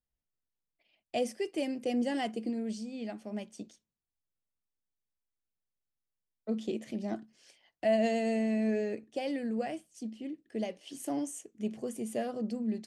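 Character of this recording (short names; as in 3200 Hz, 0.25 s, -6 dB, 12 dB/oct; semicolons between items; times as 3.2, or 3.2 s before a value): noise floor -90 dBFS; spectral tilt -5.0 dB/oct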